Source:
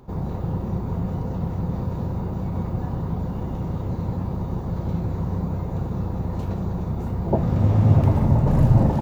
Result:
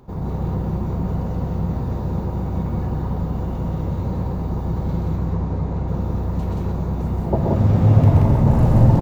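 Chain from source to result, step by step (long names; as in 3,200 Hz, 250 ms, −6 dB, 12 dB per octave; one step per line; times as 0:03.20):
0:05.16–0:05.88: high-frequency loss of the air 59 metres
loudspeakers that aren't time-aligned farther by 44 metres −4 dB, 61 metres −2 dB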